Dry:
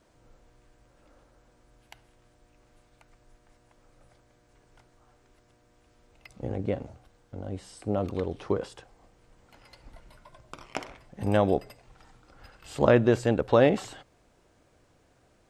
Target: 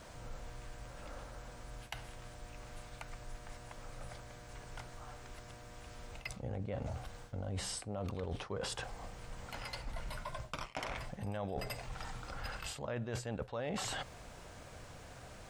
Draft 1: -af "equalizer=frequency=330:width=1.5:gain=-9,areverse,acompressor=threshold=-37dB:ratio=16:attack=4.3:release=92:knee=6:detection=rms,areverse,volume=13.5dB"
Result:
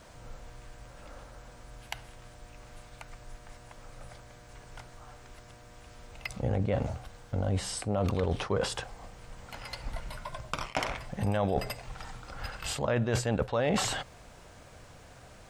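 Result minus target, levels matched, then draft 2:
downward compressor: peak gain reduction −11.5 dB
-af "equalizer=frequency=330:width=1.5:gain=-9,areverse,acompressor=threshold=-49dB:ratio=16:attack=4.3:release=92:knee=6:detection=rms,areverse,volume=13.5dB"

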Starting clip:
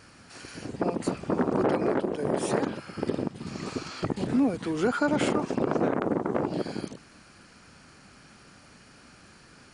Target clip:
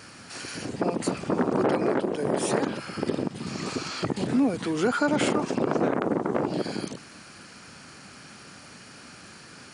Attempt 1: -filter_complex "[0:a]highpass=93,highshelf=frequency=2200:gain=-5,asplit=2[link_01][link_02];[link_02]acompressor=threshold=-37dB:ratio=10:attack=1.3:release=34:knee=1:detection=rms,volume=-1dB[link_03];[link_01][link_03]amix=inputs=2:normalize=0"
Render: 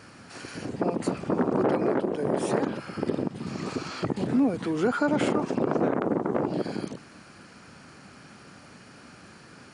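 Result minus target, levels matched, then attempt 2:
4,000 Hz band −5.5 dB
-filter_complex "[0:a]highpass=93,highshelf=frequency=2200:gain=3.5,asplit=2[link_01][link_02];[link_02]acompressor=threshold=-37dB:ratio=10:attack=1.3:release=34:knee=1:detection=rms,volume=-1dB[link_03];[link_01][link_03]amix=inputs=2:normalize=0"

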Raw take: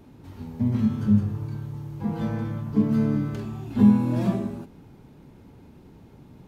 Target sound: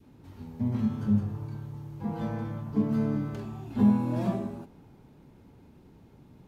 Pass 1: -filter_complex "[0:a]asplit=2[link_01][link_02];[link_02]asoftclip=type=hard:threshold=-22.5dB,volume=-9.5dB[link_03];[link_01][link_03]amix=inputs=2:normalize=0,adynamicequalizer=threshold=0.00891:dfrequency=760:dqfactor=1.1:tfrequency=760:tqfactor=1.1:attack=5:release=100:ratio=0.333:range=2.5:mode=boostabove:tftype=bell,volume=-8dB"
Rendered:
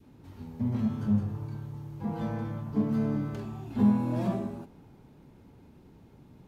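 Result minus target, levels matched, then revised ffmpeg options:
hard clipping: distortion +12 dB
-filter_complex "[0:a]asplit=2[link_01][link_02];[link_02]asoftclip=type=hard:threshold=-12dB,volume=-9.5dB[link_03];[link_01][link_03]amix=inputs=2:normalize=0,adynamicequalizer=threshold=0.00891:dfrequency=760:dqfactor=1.1:tfrequency=760:tqfactor=1.1:attack=5:release=100:ratio=0.333:range=2.5:mode=boostabove:tftype=bell,volume=-8dB"

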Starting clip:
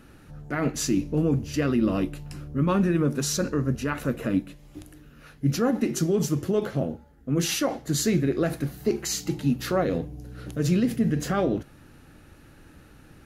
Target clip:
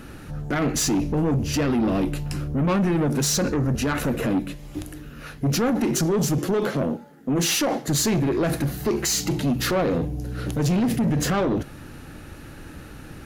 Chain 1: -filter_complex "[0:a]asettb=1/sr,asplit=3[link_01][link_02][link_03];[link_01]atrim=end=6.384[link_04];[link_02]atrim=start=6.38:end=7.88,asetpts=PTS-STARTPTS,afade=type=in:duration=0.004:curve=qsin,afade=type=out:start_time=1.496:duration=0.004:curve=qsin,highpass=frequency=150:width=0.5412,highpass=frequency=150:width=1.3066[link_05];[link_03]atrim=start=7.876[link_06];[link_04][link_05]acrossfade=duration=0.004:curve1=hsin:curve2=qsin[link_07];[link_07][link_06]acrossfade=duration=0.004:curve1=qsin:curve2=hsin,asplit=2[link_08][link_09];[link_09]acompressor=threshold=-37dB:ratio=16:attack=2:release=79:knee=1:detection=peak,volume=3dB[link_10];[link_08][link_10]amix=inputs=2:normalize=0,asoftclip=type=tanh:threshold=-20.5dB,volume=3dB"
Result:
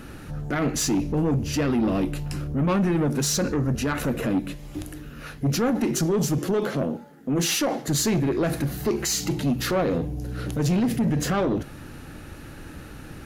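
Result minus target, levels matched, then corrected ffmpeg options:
downward compressor: peak gain reduction +9 dB
-filter_complex "[0:a]asettb=1/sr,asplit=3[link_01][link_02][link_03];[link_01]atrim=end=6.384[link_04];[link_02]atrim=start=6.38:end=7.88,asetpts=PTS-STARTPTS,afade=type=in:duration=0.004:curve=qsin,afade=type=out:start_time=1.496:duration=0.004:curve=qsin,highpass=frequency=150:width=0.5412,highpass=frequency=150:width=1.3066[link_05];[link_03]atrim=start=7.876[link_06];[link_04][link_05]acrossfade=duration=0.004:curve1=hsin:curve2=qsin[link_07];[link_07][link_06]acrossfade=duration=0.004:curve1=qsin:curve2=hsin,asplit=2[link_08][link_09];[link_09]acompressor=threshold=-27.5dB:ratio=16:attack=2:release=79:knee=1:detection=peak,volume=3dB[link_10];[link_08][link_10]amix=inputs=2:normalize=0,asoftclip=type=tanh:threshold=-20.5dB,volume=3dB"

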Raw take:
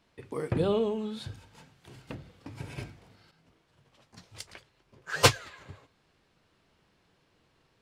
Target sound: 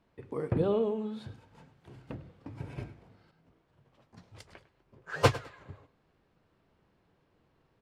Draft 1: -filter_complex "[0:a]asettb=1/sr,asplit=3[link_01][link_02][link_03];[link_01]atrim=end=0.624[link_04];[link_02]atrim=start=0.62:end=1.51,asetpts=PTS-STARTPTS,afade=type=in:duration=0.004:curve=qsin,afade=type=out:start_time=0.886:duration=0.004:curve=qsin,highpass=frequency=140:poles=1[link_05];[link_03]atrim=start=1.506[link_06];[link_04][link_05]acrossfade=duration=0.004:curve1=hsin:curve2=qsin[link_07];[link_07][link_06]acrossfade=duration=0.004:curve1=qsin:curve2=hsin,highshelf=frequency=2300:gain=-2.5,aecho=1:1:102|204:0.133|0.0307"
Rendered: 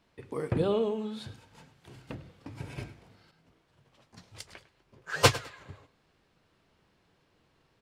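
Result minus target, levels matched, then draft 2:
4,000 Hz band +6.5 dB
-filter_complex "[0:a]asettb=1/sr,asplit=3[link_01][link_02][link_03];[link_01]atrim=end=0.624[link_04];[link_02]atrim=start=0.62:end=1.51,asetpts=PTS-STARTPTS,afade=type=in:duration=0.004:curve=qsin,afade=type=out:start_time=0.886:duration=0.004:curve=qsin,highpass=frequency=140:poles=1[link_05];[link_03]atrim=start=1.506[link_06];[link_04][link_05]acrossfade=duration=0.004:curve1=hsin:curve2=qsin[link_07];[link_07][link_06]acrossfade=duration=0.004:curve1=qsin:curve2=hsin,highshelf=frequency=2300:gain=-14.5,aecho=1:1:102|204:0.133|0.0307"

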